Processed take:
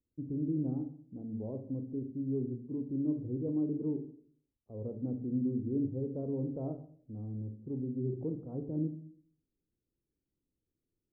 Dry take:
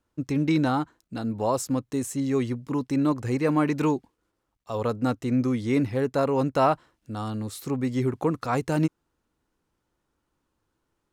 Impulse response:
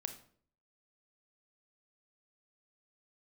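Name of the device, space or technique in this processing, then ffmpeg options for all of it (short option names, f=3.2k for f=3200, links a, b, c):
next room: -filter_complex "[0:a]lowpass=f=450:w=0.5412,lowpass=f=450:w=1.3066[a];[1:a]atrim=start_sample=2205[b];[a][b]afir=irnorm=-1:irlink=0,volume=-8dB"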